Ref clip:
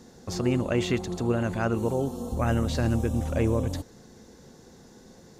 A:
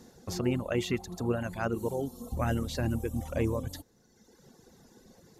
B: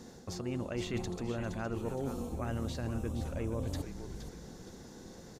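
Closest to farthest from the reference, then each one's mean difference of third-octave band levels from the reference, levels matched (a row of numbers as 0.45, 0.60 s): A, B; 3.5, 5.5 dB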